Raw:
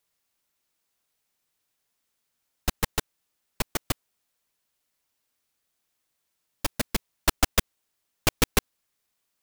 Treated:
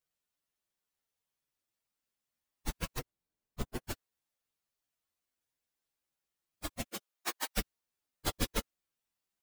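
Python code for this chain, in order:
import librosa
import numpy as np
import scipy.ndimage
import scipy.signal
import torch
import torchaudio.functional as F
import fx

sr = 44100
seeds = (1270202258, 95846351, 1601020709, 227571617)

y = fx.partial_stretch(x, sr, pct=116)
y = fx.tilt_shelf(y, sr, db=5.5, hz=770.0, at=(2.99, 3.84))
y = fx.highpass(y, sr, hz=fx.line((6.87, 240.0), (7.56, 700.0)), slope=12, at=(6.87, 7.56), fade=0.02)
y = y * 10.0 ** (-4.5 / 20.0)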